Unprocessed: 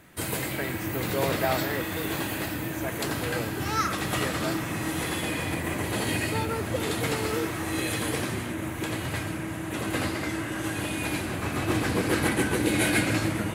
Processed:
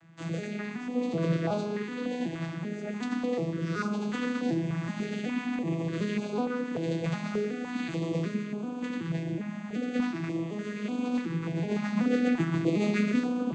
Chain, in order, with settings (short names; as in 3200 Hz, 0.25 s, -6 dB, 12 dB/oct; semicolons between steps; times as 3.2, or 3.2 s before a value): arpeggiated vocoder major triad, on E3, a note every 0.375 s; reverb RT60 0.85 s, pre-delay 28 ms, DRR 14.5 dB; stepped notch 3.4 Hz 420–1900 Hz